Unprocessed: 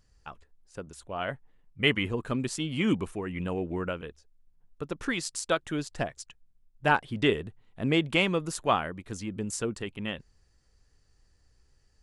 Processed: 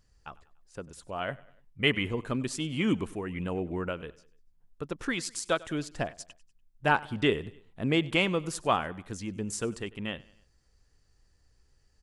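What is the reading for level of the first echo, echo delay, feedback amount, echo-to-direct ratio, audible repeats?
−21.5 dB, 97 ms, 49%, −20.5 dB, 3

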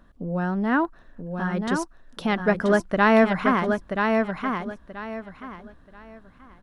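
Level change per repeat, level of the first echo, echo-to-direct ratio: −12.0 dB, −5.0 dB, −4.5 dB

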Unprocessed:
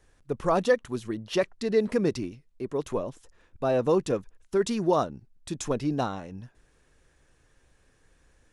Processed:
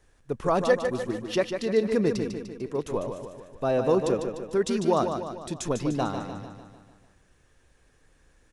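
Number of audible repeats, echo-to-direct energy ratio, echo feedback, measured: 6, −5.5 dB, 54%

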